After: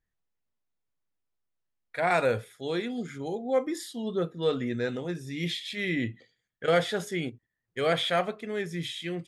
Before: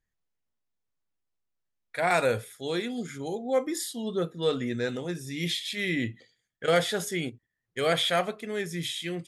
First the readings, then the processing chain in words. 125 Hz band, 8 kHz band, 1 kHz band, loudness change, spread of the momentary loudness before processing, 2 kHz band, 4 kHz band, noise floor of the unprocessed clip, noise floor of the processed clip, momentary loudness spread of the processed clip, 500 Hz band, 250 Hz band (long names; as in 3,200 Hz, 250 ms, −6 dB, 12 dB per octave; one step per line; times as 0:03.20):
0.0 dB, −7.5 dB, −0.5 dB, −1.0 dB, 10 LU, −1.0 dB, −3.0 dB, −82 dBFS, −83 dBFS, 9 LU, 0.0 dB, 0.0 dB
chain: high-shelf EQ 5,600 Hz −11.5 dB